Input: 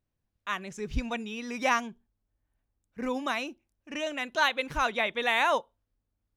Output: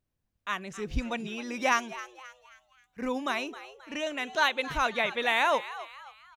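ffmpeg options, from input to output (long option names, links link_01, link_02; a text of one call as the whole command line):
ffmpeg -i in.wav -filter_complex "[0:a]asettb=1/sr,asplit=3[link_01][link_02][link_03];[link_01]atrim=end=1.724[link_04];[link_02]atrim=start=1.72:end=3.02,asetpts=PTS-STARTPTS,afade=type=in:duration=0.004:curve=qsin,afade=type=out:start_time=1.296:duration=0.004:curve=qsin,tiltshelf=frequency=970:gain=-3.5[link_05];[link_03]atrim=start=3.016[link_06];[link_04][link_05]acrossfade=duration=0.004:curve1=hsin:curve2=qsin[link_07];[link_07][link_06]acrossfade=duration=0.004:curve1=qsin:curve2=hsin,asplit=5[link_08][link_09][link_10][link_11][link_12];[link_09]adelay=266,afreqshift=130,volume=-15dB[link_13];[link_10]adelay=532,afreqshift=260,volume=-22.7dB[link_14];[link_11]adelay=798,afreqshift=390,volume=-30.5dB[link_15];[link_12]adelay=1064,afreqshift=520,volume=-38.2dB[link_16];[link_08][link_13][link_14][link_15][link_16]amix=inputs=5:normalize=0" out.wav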